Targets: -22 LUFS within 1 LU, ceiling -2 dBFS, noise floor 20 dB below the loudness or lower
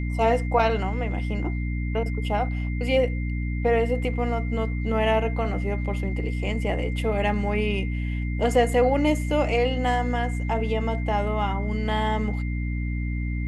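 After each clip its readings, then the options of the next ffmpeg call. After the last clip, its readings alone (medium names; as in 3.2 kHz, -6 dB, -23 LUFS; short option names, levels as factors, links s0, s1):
hum 60 Hz; highest harmonic 300 Hz; hum level -25 dBFS; steady tone 2.1 kHz; tone level -39 dBFS; loudness -25.0 LUFS; peak level -8.5 dBFS; loudness target -22.0 LUFS
-> -af "bandreject=f=60:t=h:w=4,bandreject=f=120:t=h:w=4,bandreject=f=180:t=h:w=4,bandreject=f=240:t=h:w=4,bandreject=f=300:t=h:w=4"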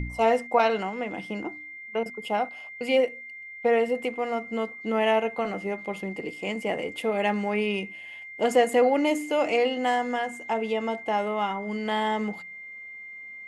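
hum not found; steady tone 2.1 kHz; tone level -39 dBFS
-> -af "bandreject=f=2100:w=30"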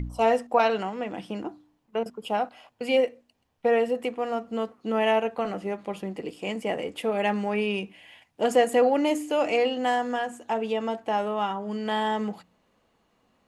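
steady tone not found; loudness -27.0 LUFS; peak level -9.5 dBFS; loudness target -22.0 LUFS
-> -af "volume=1.78"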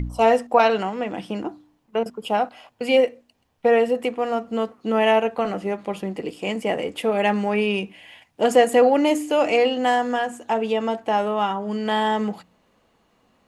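loudness -22.0 LUFS; peak level -4.5 dBFS; noise floor -64 dBFS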